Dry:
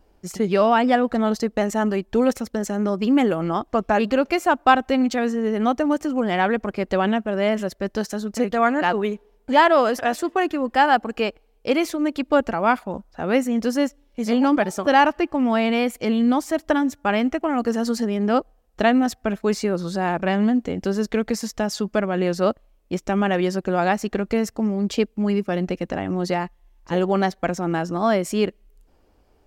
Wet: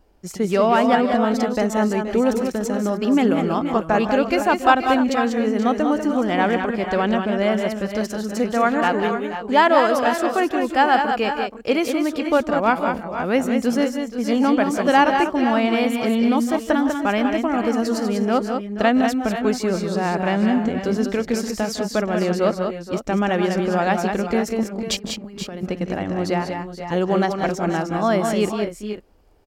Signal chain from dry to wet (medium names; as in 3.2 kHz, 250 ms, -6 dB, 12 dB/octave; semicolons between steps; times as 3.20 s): 24.63–25.63 s: compressor with a negative ratio -29 dBFS, ratio -0.5; multi-tap echo 156/172/194/477/501 ms -16.5/-14.5/-6/-13/-11.5 dB